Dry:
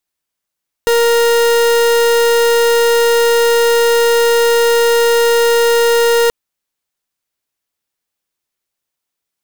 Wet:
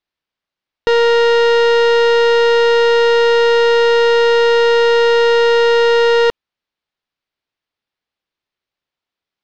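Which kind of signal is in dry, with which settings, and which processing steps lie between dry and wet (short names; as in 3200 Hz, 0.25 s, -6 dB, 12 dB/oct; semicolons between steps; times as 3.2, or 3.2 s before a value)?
pulse 468 Hz, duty 41% -11 dBFS 5.43 s
LPF 4500 Hz 24 dB/oct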